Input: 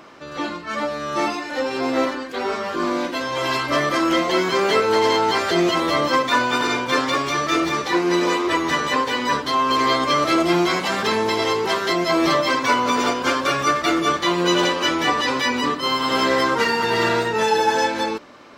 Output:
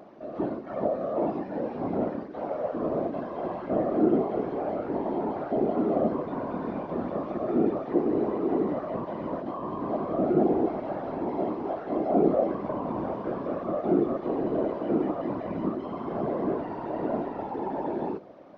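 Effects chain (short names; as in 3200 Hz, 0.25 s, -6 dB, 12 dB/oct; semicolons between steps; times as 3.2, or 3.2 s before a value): delta modulation 32 kbps, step -37 dBFS; double band-pass 440 Hz, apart 0.97 oct; whisperiser; gain +2.5 dB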